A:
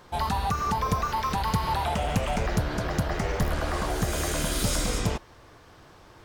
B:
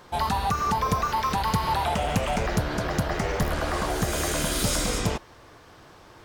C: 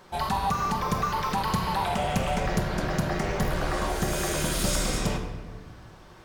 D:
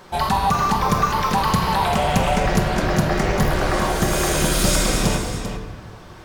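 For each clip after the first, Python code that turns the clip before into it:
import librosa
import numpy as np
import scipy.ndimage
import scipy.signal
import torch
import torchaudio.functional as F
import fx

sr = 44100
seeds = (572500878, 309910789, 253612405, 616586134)

y1 = fx.low_shelf(x, sr, hz=110.0, db=-5.0)
y1 = y1 * librosa.db_to_amplitude(2.5)
y2 = fx.room_shoebox(y1, sr, seeds[0], volume_m3=1300.0, walls='mixed', distance_m=1.1)
y2 = y2 * librosa.db_to_amplitude(-3.0)
y3 = y2 + 10.0 ** (-9.0 / 20.0) * np.pad(y2, (int(394 * sr / 1000.0), 0))[:len(y2)]
y3 = y3 * librosa.db_to_amplitude(7.5)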